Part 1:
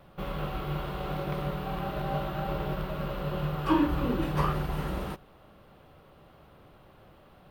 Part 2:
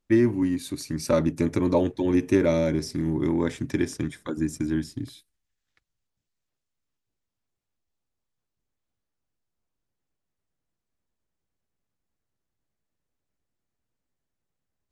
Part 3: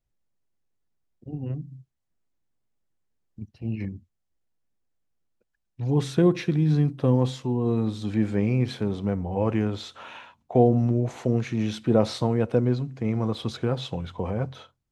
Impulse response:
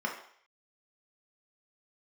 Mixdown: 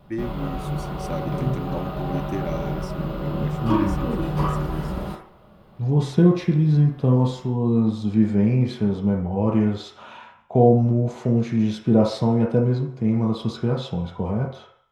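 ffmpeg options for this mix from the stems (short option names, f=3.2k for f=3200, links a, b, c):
-filter_complex "[0:a]volume=2dB,asplit=2[a][b];[b]volume=-7dB[c];[1:a]volume=-9.5dB[d];[2:a]volume=0.5dB,asplit=2[e][f];[f]volume=-6.5dB[g];[3:a]atrim=start_sample=2205[h];[c][g]amix=inputs=2:normalize=0[i];[i][h]afir=irnorm=-1:irlink=0[j];[a][d][e][j]amix=inputs=4:normalize=0"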